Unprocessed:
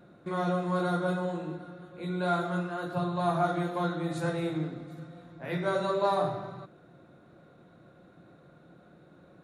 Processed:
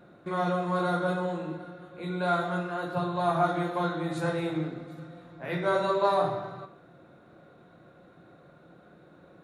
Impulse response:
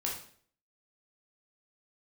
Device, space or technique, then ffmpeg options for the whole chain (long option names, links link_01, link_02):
filtered reverb send: -filter_complex "[0:a]asplit=2[link_01][link_02];[link_02]highpass=300,lowpass=4600[link_03];[1:a]atrim=start_sample=2205[link_04];[link_03][link_04]afir=irnorm=-1:irlink=0,volume=-7.5dB[link_05];[link_01][link_05]amix=inputs=2:normalize=0"